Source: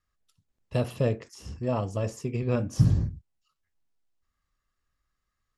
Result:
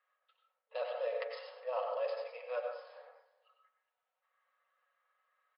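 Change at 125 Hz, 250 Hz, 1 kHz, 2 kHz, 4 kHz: under -40 dB, under -40 dB, -3.0 dB, -4.0 dB, -6.5 dB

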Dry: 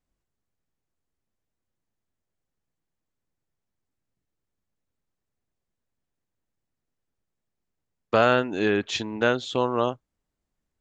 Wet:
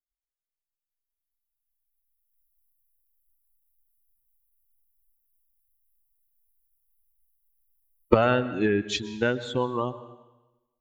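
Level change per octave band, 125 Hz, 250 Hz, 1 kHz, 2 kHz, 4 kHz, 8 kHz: +2.5 dB, +0.5 dB, -3.0 dB, -3.5 dB, -3.0 dB, n/a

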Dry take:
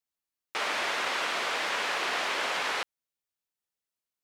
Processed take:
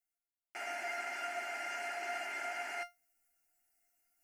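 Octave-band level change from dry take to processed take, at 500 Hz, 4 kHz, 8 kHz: -7.5, -17.5, -11.0 dB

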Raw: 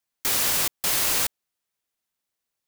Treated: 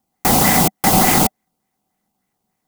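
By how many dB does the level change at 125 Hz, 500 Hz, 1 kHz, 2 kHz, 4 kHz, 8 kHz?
+22.5, +16.0, +18.5, +9.0, +4.0, +6.0 dB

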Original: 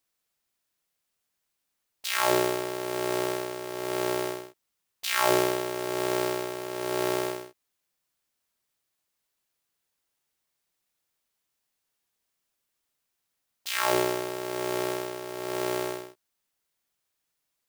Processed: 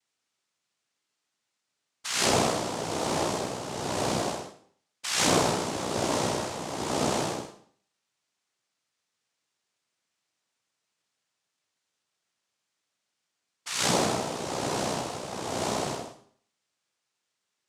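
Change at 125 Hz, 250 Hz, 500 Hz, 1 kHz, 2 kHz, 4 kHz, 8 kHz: +7.0, +1.5, -2.0, +1.0, -1.5, +3.5, +5.5 dB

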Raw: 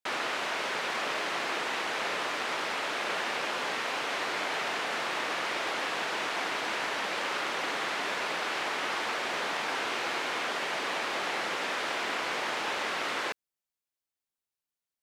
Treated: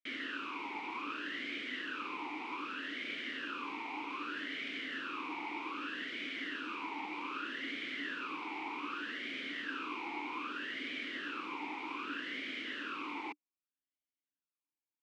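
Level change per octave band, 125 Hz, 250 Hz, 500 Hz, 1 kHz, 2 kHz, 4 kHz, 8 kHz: under -10 dB, -0.5 dB, -15.5 dB, -10.0 dB, -8.5 dB, -10.0 dB, -23.0 dB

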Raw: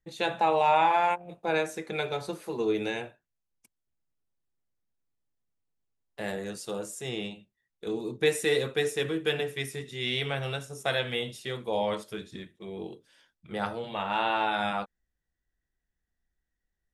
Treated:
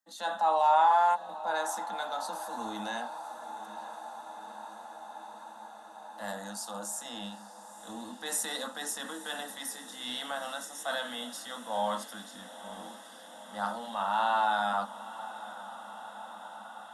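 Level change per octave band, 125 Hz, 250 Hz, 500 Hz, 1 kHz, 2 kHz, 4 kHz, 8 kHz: under -15 dB, -8.0 dB, -7.5 dB, +1.5 dB, -4.5 dB, -4.0 dB, +5.0 dB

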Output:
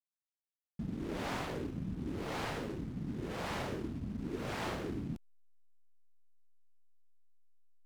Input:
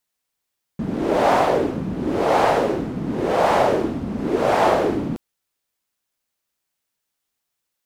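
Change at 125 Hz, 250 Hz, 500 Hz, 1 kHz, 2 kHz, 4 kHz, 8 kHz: -10.5, -15.5, -23.5, -23.5, -16.0, -13.5, -13.5 dB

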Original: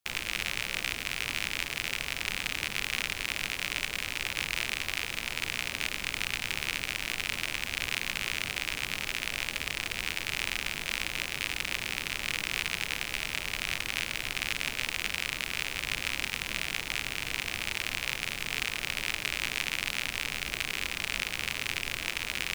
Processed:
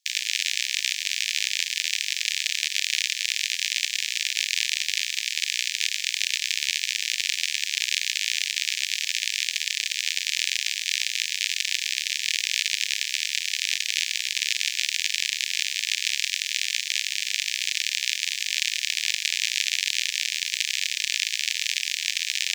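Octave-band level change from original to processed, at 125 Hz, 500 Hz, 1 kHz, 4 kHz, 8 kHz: under -40 dB, under -40 dB, under -30 dB, +9.5 dB, +11.5 dB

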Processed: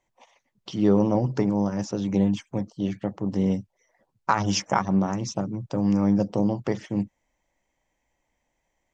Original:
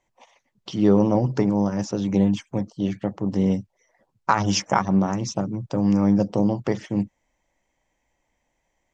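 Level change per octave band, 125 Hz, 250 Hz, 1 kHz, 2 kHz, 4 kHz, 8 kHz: -2.5 dB, -2.5 dB, -2.5 dB, -2.5 dB, -2.5 dB, n/a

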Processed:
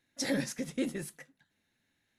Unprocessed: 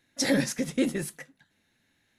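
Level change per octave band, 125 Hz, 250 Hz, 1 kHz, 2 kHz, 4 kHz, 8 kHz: -7.0, -7.0, -7.0, -7.0, -7.0, -7.0 dB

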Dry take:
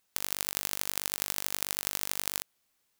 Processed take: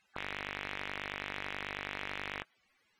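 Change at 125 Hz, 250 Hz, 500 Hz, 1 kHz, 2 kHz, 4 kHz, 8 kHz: 0.0, 0.0, +0.5, +1.0, +3.5, -8.0, -27.0 dB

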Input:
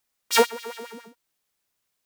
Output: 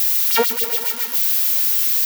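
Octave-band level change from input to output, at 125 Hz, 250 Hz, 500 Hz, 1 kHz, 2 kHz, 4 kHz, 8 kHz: n/a, +1.0 dB, +0.5 dB, +0.5 dB, +2.5 dB, +6.0 dB, +11.0 dB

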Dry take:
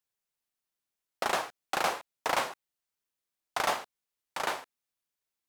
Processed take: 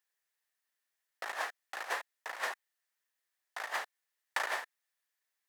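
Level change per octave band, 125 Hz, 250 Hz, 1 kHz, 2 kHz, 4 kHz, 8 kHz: under -25 dB, -17.5 dB, -8.0 dB, -2.0 dB, -7.5 dB, -8.0 dB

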